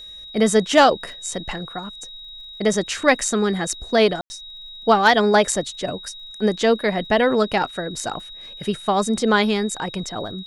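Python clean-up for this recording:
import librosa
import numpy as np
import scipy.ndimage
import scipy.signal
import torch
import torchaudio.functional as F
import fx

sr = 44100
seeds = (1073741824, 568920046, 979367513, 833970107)

y = fx.fix_declip(x, sr, threshold_db=-4.5)
y = fx.fix_declick_ar(y, sr, threshold=6.5)
y = fx.notch(y, sr, hz=3800.0, q=30.0)
y = fx.fix_ambience(y, sr, seeds[0], print_start_s=2.1, print_end_s=2.6, start_s=4.21, end_s=4.3)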